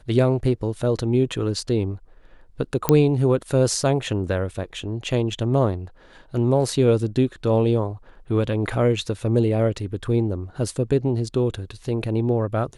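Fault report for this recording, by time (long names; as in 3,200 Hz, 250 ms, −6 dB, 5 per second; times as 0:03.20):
0:02.89: click −3 dBFS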